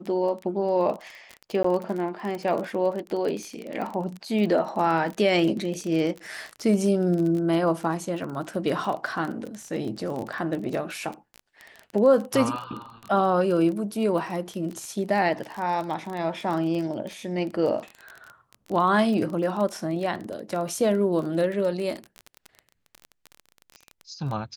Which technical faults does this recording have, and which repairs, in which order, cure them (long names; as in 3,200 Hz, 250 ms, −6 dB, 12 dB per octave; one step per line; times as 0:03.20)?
surface crackle 24 per second −29 dBFS
0:01.63–0:01.64: drop-out 14 ms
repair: click removal
repair the gap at 0:01.63, 14 ms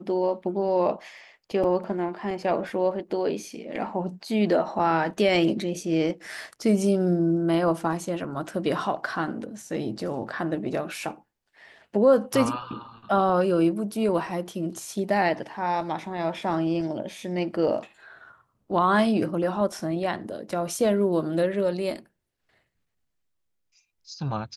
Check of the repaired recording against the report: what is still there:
none of them is left